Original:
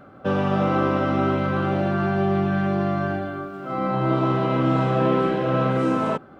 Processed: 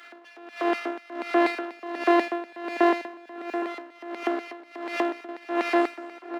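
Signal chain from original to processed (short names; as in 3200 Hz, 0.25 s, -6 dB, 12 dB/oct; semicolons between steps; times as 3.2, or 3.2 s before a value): opening faded in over 1.21 s; robotiser 344 Hz; bell 600 Hz -14.5 dB 0.23 oct; shoebox room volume 180 m³, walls furnished, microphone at 2 m; LFO high-pass square 4.1 Hz 370–2200 Hz; 3.01–5.29 compressor 6:1, threshold -22 dBFS, peak gain reduction 11.5 dB; half-wave rectifier; upward compressor, threshold -23 dBFS; steep high-pass 230 Hz 48 dB/oct; bell 1500 Hz +8 dB 2.7 oct; outdoor echo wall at 140 m, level -11 dB; dB-linear tremolo 1.4 Hz, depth 20 dB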